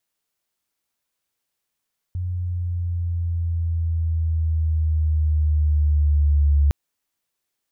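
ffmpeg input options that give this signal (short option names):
-f lavfi -i "aevalsrc='pow(10,(-13+10*(t/4.56-1))/20)*sin(2*PI*90.2*4.56/(-4*log(2)/12)*(exp(-4*log(2)/12*t/4.56)-1))':d=4.56:s=44100"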